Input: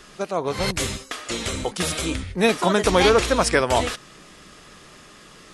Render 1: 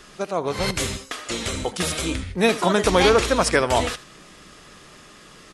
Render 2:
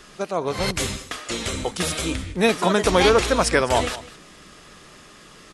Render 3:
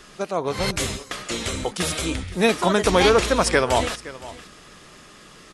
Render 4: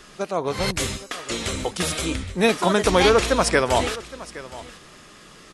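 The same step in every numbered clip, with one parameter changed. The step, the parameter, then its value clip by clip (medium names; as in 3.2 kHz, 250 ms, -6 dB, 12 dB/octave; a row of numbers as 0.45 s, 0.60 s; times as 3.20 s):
delay, time: 78 ms, 205 ms, 518 ms, 817 ms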